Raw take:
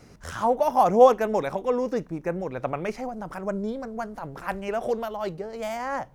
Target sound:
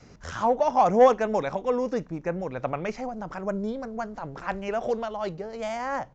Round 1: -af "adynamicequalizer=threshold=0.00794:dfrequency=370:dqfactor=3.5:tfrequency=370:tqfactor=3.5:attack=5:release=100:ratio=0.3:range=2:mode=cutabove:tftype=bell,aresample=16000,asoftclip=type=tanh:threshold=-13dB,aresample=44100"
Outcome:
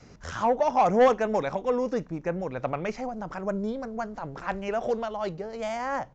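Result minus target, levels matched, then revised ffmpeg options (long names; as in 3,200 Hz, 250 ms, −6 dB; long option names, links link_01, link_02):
soft clipping: distortion +8 dB
-af "adynamicequalizer=threshold=0.00794:dfrequency=370:dqfactor=3.5:tfrequency=370:tqfactor=3.5:attack=5:release=100:ratio=0.3:range=2:mode=cutabove:tftype=bell,aresample=16000,asoftclip=type=tanh:threshold=-7dB,aresample=44100"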